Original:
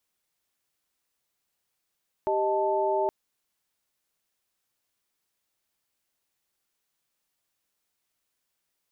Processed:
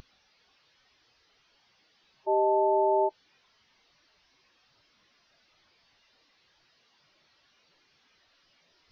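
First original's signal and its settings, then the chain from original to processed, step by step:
held notes G4/D#5/A5 sine, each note −27 dBFS 0.82 s
linear delta modulator 32 kbit/s, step −32.5 dBFS
in parallel at −2 dB: compressor whose output falls as the input rises −34 dBFS, ratio −1
on the sum: every bin expanded away from the loudest bin 2.5 to 1

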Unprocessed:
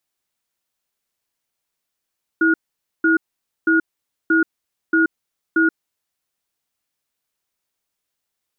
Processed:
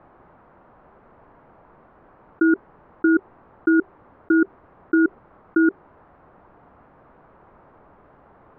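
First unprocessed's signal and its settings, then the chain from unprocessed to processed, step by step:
tone pair in a cadence 325 Hz, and 1,440 Hz, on 0.13 s, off 0.50 s, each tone −15 dBFS 3.37 s
low-pass filter 1,200 Hz 24 dB per octave
dynamic equaliser 390 Hz, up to +5 dB, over −34 dBFS, Q 3.6
envelope flattener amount 100%

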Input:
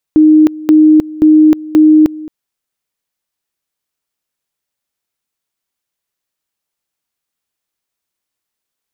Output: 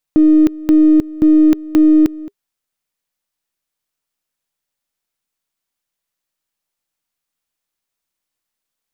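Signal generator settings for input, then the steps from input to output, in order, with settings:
tone at two levels in turn 309 Hz −2.5 dBFS, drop 20 dB, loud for 0.31 s, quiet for 0.22 s, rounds 4
gain on one half-wave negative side −3 dB
notch filter 400 Hz, Q 12
dynamic equaliser 710 Hz, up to −7 dB, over −28 dBFS, Q 0.94

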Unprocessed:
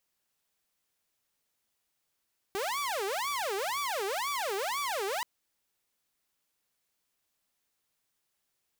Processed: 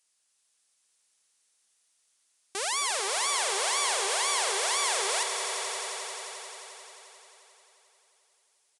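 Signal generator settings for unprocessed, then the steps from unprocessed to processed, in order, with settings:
siren wail 385–1,160 Hz 2 per second saw −28 dBFS 2.68 s
RIAA equalisation recording
on a send: echo that builds up and dies away 88 ms, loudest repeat 5, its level −11 dB
on the sum: downsampling to 22,050 Hz

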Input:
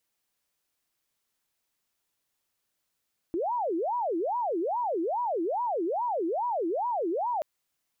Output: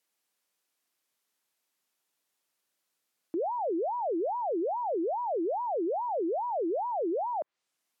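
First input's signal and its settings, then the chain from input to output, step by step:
siren wail 324–982 Hz 2.4 per second sine −26 dBFS 4.08 s
treble cut that deepens with the level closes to 920 Hz, closed at −27 dBFS
high-pass filter 210 Hz 12 dB per octave

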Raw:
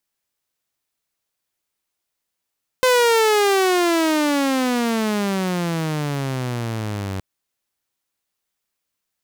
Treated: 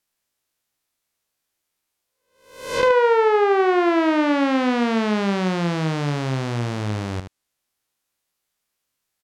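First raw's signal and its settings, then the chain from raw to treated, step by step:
pitch glide with a swell saw, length 4.37 s, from 515 Hz, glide −29.5 semitones, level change −12 dB, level −10 dB
peak hold with a rise ahead of every peak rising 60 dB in 0.60 s
treble cut that deepens with the level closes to 1,500 Hz, closed at −13.5 dBFS
on a send: single-tap delay 75 ms −9 dB

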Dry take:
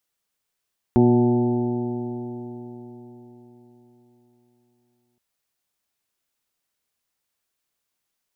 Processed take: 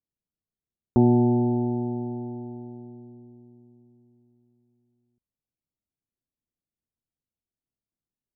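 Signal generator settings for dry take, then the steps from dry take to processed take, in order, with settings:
stiff-string partials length 4.22 s, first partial 120 Hz, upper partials 4/2.5/−16/−14/−10/−11 dB, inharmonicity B 0.0016, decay 4.36 s, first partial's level −18.5 dB
low-pass that shuts in the quiet parts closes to 330 Hz, open at −22 dBFS
low-pass filter 1,200 Hz
parametric band 440 Hz −3.5 dB 1.1 octaves

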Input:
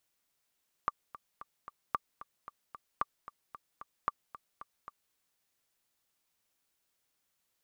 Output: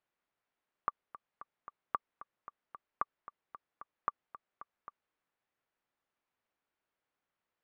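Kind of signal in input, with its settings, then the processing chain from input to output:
click track 225 BPM, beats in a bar 4, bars 4, 1,170 Hz, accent 16 dB −16 dBFS
low-pass filter 1,900 Hz 12 dB per octave
low-shelf EQ 200 Hz −7 dB

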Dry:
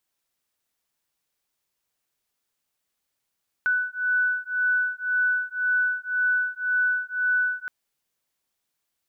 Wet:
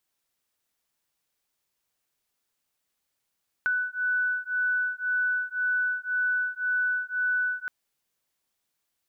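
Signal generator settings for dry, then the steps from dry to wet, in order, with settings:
two tones that beat 1,490 Hz, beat 1.9 Hz, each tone −24.5 dBFS 4.02 s
downward compressor 3 to 1, threshold −25 dBFS

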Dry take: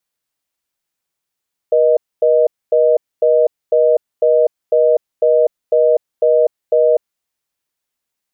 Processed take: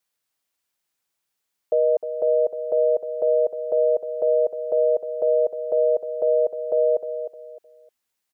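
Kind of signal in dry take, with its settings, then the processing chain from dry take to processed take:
call progress tone reorder tone, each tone −11.5 dBFS 5.25 s
low-shelf EQ 390 Hz −4.5 dB
brickwall limiter −12.5 dBFS
repeating echo 307 ms, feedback 27%, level −10 dB

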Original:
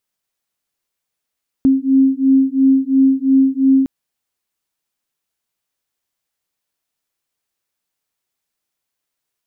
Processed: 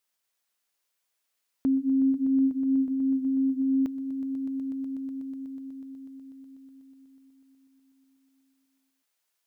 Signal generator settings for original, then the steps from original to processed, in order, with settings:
two tones that beat 266 Hz, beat 2.9 Hz, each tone −13 dBFS 2.21 s
low-shelf EQ 320 Hz −12 dB
brickwall limiter −19.5 dBFS
on a send: echo that builds up and dies away 123 ms, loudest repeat 5, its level −14 dB

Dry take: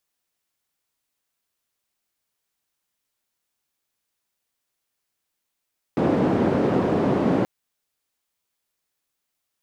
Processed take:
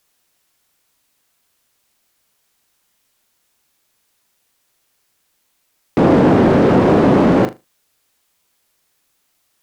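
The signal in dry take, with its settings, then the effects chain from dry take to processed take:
band-limited noise 180–360 Hz, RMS −20.5 dBFS 1.48 s
in parallel at +2.5 dB: brickwall limiter −21 dBFS
on the sum: sine wavefolder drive 3 dB, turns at −6.5 dBFS
flutter between parallel walls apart 6.7 metres, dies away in 0.22 s

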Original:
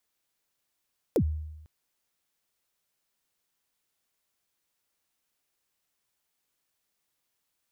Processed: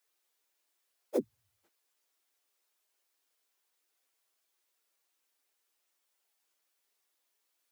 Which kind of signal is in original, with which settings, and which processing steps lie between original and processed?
synth kick length 0.50 s, from 560 Hz, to 77 Hz, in 74 ms, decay 0.99 s, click on, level −18.5 dB
random phases in long frames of 50 ms
high-pass filter 310 Hz 24 dB per octave

